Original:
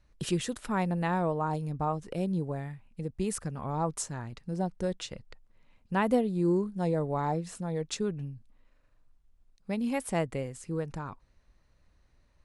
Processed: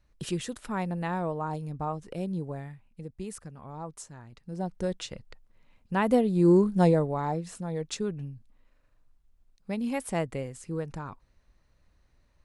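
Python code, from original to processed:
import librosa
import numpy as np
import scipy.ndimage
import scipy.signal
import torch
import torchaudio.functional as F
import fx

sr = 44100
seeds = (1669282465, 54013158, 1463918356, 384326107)

y = fx.gain(x, sr, db=fx.line((2.58, -2.0), (3.59, -9.0), (4.26, -9.0), (4.76, 1.0), (5.98, 1.0), (6.81, 10.0), (7.15, 0.0)))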